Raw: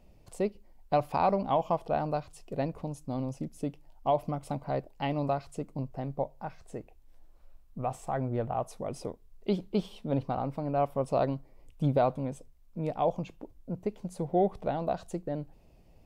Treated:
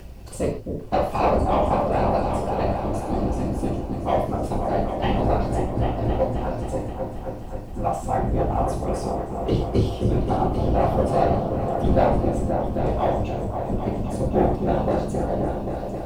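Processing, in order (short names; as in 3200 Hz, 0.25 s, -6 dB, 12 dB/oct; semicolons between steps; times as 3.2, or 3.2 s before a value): octaver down 1 oct, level -1 dB; upward compressor, threshold -38 dBFS; sample leveller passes 1; added noise pink -64 dBFS; whisperiser; repeats that get brighter 0.265 s, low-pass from 400 Hz, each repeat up 2 oct, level -3 dB; non-linear reverb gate 0.16 s falling, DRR -1.5 dB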